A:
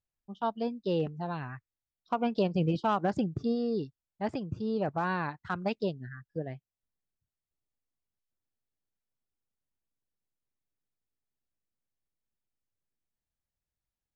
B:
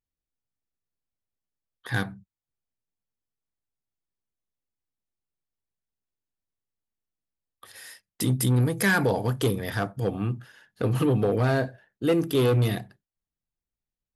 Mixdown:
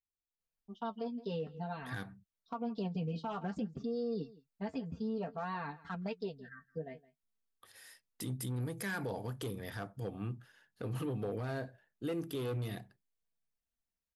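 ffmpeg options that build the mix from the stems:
-filter_complex "[0:a]aecho=1:1:4.4:0.96,flanger=delay=6:depth=6.6:regen=38:speed=0.54:shape=sinusoidal,adelay=400,volume=0.708,asplit=2[s0][s1];[s1]volume=0.0794[s2];[1:a]volume=0.266[s3];[s2]aecho=0:1:165:1[s4];[s0][s3][s4]amix=inputs=3:normalize=0,alimiter=level_in=1.88:limit=0.0631:level=0:latency=1:release=152,volume=0.531"

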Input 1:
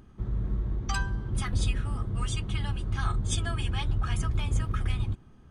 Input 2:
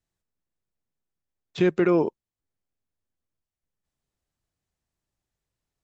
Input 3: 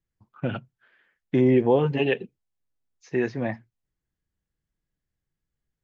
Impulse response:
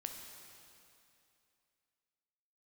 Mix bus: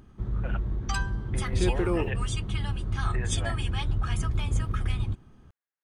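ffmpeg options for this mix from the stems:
-filter_complex "[0:a]volume=1.06[s0];[1:a]acrusher=bits=9:mix=0:aa=0.000001,volume=0.422[s1];[2:a]lowpass=1900,acompressor=threshold=0.0794:ratio=6,highpass=880,volume=1[s2];[s0][s1][s2]amix=inputs=3:normalize=0"

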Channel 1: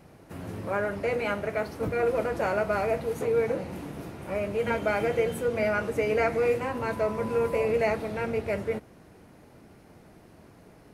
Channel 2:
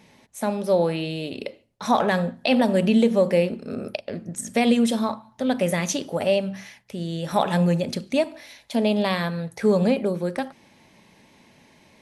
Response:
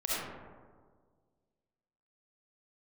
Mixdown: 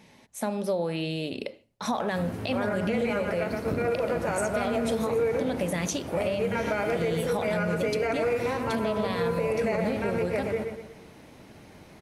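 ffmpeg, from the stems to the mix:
-filter_complex "[0:a]adelay=1850,volume=1.12,asplit=2[s0][s1];[s1]volume=0.447[s2];[1:a]acompressor=threshold=0.0708:ratio=6,volume=0.891[s3];[s2]aecho=0:1:120|240|360|480|600|720:1|0.41|0.168|0.0689|0.0283|0.0116[s4];[s0][s3][s4]amix=inputs=3:normalize=0,alimiter=limit=0.119:level=0:latency=1:release=77"

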